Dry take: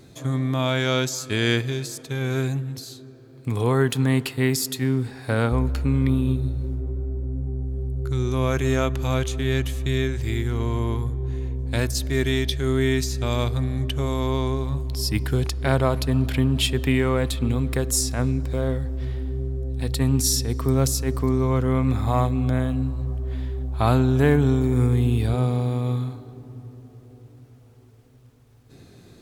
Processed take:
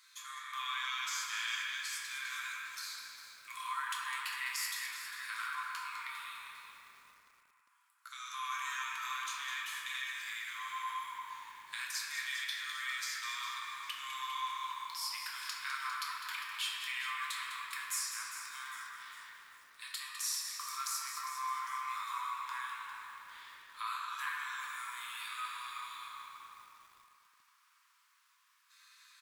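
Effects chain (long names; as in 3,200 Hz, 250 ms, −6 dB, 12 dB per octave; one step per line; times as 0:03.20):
Chebyshev high-pass filter 1,000 Hz, order 8
downward compressor 2 to 1, threshold −39 dBFS, peak gain reduction 11 dB
echo with shifted repeats 204 ms, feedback 40%, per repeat −51 Hz, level −9.5 dB
convolution reverb RT60 3.1 s, pre-delay 7 ms, DRR −4 dB
feedback echo at a low word length 402 ms, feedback 55%, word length 8 bits, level −11.5 dB
level −5.5 dB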